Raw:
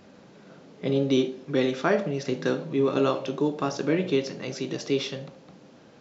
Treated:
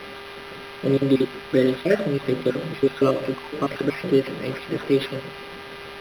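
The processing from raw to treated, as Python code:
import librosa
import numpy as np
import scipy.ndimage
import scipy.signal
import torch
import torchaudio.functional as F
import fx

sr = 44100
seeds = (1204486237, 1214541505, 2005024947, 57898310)

p1 = fx.spec_dropout(x, sr, seeds[0], share_pct=44)
p2 = fx.dmg_buzz(p1, sr, base_hz=400.0, harmonics=17, level_db=-44.0, tilt_db=-3, odd_only=False)
p3 = fx.peak_eq(p2, sr, hz=860.0, db=-12.0, octaves=0.3)
p4 = fx.hum_notches(p3, sr, base_hz=50, count=5)
p5 = fx.quant_dither(p4, sr, seeds[1], bits=6, dither='triangular')
p6 = p4 + F.gain(torch.from_numpy(p5), -7.5).numpy()
p7 = np.interp(np.arange(len(p6)), np.arange(len(p6))[::6], p6[::6])
y = F.gain(torch.from_numpy(p7), 3.0).numpy()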